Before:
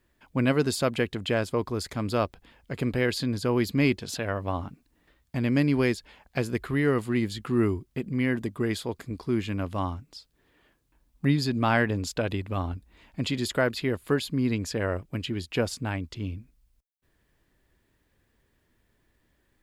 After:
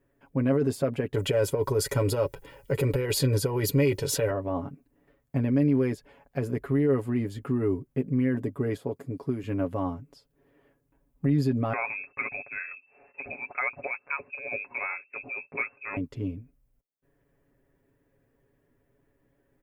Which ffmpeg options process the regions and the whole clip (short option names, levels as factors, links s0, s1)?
-filter_complex "[0:a]asettb=1/sr,asplit=3[s0][s1][s2];[s0]atrim=end=1.144[s3];[s1]atrim=start=1.14:end=4.31,asetpts=PTS-STARTPTS,afade=t=in:d=0.004:c=qsin,afade=t=out:st=3.166:d=0.004:c=qsin,highshelf=f=2700:g=11,aecho=1:1:2.1:0.71,atrim=end_sample=139797,acontrast=48[s4];[s2]atrim=start=4.306[s5];[s3][s4]acrossfade=d=0.004:c1=hsin:c2=qsin[s6];[s6][s5]acrossfade=d=0.004:c1=qsin:c2=hsin,asettb=1/sr,asplit=3[s7][s8][s9];[s7]atrim=end=8.764[s10];[s8]atrim=start=8.76:end=9.44,asetpts=PTS-STARTPTS,afade=t=in:d=0.004:c=qsin,afade=t=out:st=0.676:d=0.004:c=qsin,highpass=76,acrossover=split=1200|3200[s11][s12][s13];[s11]acompressor=threshold=0.0355:ratio=4[s14];[s12]acompressor=threshold=0.002:ratio=4[s15];[s13]acompressor=threshold=0.00631:ratio=4[s16];[s14][s15][s16]amix=inputs=3:normalize=0[s17];[s9]atrim=start=9.436[s18];[s10][s17]acrossfade=d=0.004:c1=hsin:c2=qsin[s19];[s19][s18]acrossfade=d=0.004:c1=qsin:c2=hsin,asettb=1/sr,asplit=3[s20][s21][s22];[s20]atrim=end=11.734[s23];[s21]atrim=start=11.73:end=15.97,asetpts=PTS-STARTPTS,afade=t=in:d=0.004:c=qsin,afade=t=out:st=4.236:d=0.004:c=qsin,aecho=1:1:6.1:0.39,atrim=end_sample=186984,lowpass=f=2300:t=q:w=0.5098,lowpass=f=2300:t=q:w=0.6013,lowpass=f=2300:t=q:w=0.9,lowpass=f=2300:t=q:w=2.563,afreqshift=-2700[s24];[s22]atrim=start=15.966[s25];[s23][s24]acrossfade=d=0.004:c1=hsin:c2=qsin[s26];[s26][s25]acrossfade=d=0.004:c1=qsin:c2=hsin,equalizer=f=125:t=o:w=1:g=4,equalizer=f=250:t=o:w=1:g=4,equalizer=f=500:t=o:w=1:g=9,equalizer=f=4000:t=o:w=1:g=-11,equalizer=f=8000:t=o:w=1:g=-4,alimiter=limit=0.188:level=0:latency=1:release=11,aecho=1:1:7.2:0.69,volume=0.562"